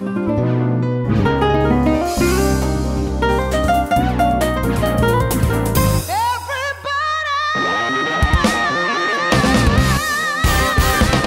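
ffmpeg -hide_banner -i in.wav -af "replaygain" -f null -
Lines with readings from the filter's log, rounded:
track_gain = -0.8 dB
track_peak = 0.488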